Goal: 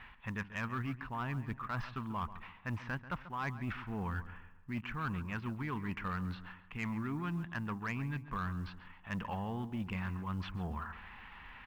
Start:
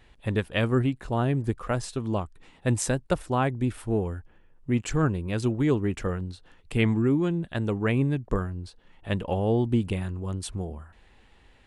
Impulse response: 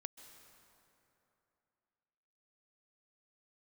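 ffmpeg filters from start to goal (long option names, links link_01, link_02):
-filter_complex "[0:a]highshelf=frequency=5300:width_type=q:width=3:gain=-9.5,acrossover=split=3400[link_01][link_02];[link_02]acompressor=threshold=-48dB:ratio=4:attack=1:release=60[link_03];[link_01][link_03]amix=inputs=2:normalize=0,firequalizer=gain_entry='entry(120,0);entry(200,5);entry(330,-6);entry(530,-6);entry(1000,14);entry(1600,11);entry(2600,7);entry(4000,-11);entry(5800,-1);entry(9600,-27)':delay=0.05:min_phase=1,areverse,acompressor=threshold=-35dB:ratio=6,areverse,asoftclip=type=tanh:threshold=-29dB,acrusher=bits=9:mode=log:mix=0:aa=0.000001,asplit=2[link_04][link_05];[link_05]adelay=138,lowpass=frequency=2800:poles=1,volume=-13.5dB,asplit=2[link_06][link_07];[link_07]adelay=138,lowpass=frequency=2800:poles=1,volume=0.39,asplit=2[link_08][link_09];[link_09]adelay=138,lowpass=frequency=2800:poles=1,volume=0.39,asplit=2[link_10][link_11];[link_11]adelay=138,lowpass=frequency=2800:poles=1,volume=0.39[link_12];[link_04][link_06][link_08][link_10][link_12]amix=inputs=5:normalize=0"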